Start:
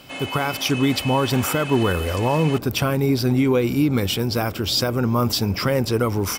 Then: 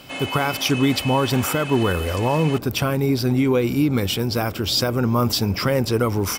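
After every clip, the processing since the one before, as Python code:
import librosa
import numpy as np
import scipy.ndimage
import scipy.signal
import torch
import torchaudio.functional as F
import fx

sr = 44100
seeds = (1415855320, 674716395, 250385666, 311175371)

y = fx.rider(x, sr, range_db=3, speed_s=2.0)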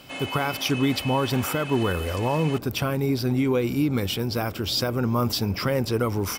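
y = fx.dynamic_eq(x, sr, hz=7500.0, q=1.7, threshold_db=-40.0, ratio=4.0, max_db=-3)
y = y * librosa.db_to_amplitude(-4.0)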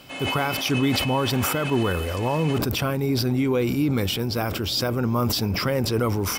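y = fx.sustainer(x, sr, db_per_s=27.0)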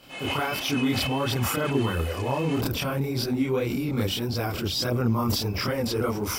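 y = fx.chorus_voices(x, sr, voices=2, hz=1.5, base_ms=28, depth_ms=3.0, mix_pct=60)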